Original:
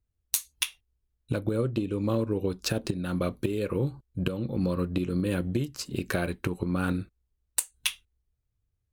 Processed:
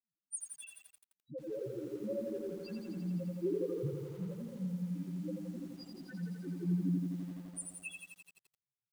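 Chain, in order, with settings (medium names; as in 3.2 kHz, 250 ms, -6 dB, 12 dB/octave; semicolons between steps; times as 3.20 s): steep high-pass 150 Hz 36 dB/octave; volume shaper 151 bpm, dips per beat 2, -22 dB, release 79 ms; loudest bins only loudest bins 1; phaser 0.29 Hz, delay 2 ms, feedback 45%; resonant high shelf 7 kHz +7.5 dB, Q 1.5; bit-crushed delay 85 ms, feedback 80%, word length 10-bit, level -4.5 dB; trim -1.5 dB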